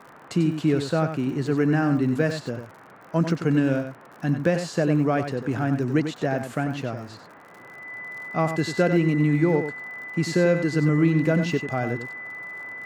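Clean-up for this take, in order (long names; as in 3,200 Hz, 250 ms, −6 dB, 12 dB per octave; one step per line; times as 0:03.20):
click removal
notch filter 2,000 Hz, Q 30
noise reduction from a noise print 22 dB
echo removal 94 ms −8.5 dB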